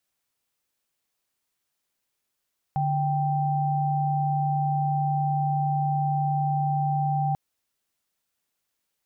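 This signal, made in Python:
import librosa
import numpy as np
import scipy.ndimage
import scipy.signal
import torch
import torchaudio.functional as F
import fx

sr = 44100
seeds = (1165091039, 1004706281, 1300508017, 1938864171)

y = fx.chord(sr, length_s=4.59, notes=(50, 79), wave='sine', level_db=-24.5)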